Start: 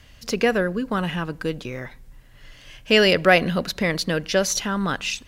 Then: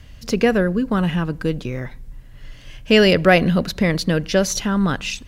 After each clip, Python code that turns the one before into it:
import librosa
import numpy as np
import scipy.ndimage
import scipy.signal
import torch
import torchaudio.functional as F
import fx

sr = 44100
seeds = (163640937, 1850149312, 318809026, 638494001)

y = fx.low_shelf(x, sr, hz=320.0, db=9.5)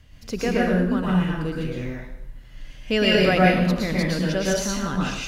y = fx.rev_plate(x, sr, seeds[0], rt60_s=0.77, hf_ratio=0.9, predelay_ms=100, drr_db=-4.5)
y = y * librosa.db_to_amplitude(-9.0)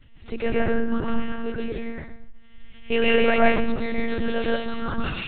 y = fx.lpc_monotone(x, sr, seeds[1], pitch_hz=230.0, order=10)